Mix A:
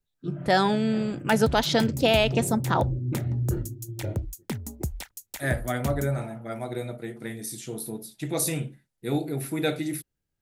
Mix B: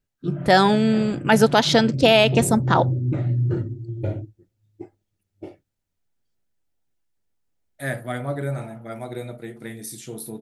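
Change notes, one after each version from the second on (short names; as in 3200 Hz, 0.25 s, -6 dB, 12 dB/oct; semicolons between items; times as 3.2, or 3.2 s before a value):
first voice +6.0 dB; second voice: entry +2.40 s; background: muted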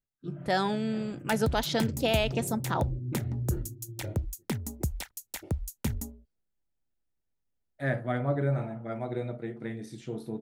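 first voice -12.0 dB; second voice: add tape spacing loss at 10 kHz 24 dB; background: unmuted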